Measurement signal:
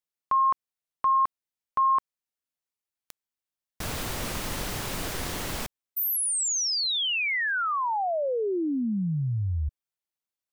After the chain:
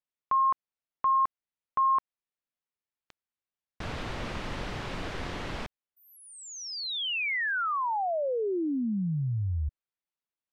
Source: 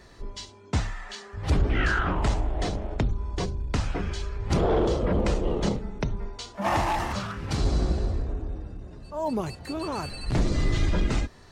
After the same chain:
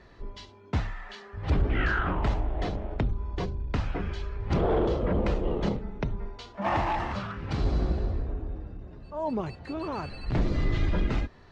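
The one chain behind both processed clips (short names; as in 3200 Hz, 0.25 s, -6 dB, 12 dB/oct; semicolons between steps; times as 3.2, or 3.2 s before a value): LPF 3300 Hz 12 dB/oct; gain -2 dB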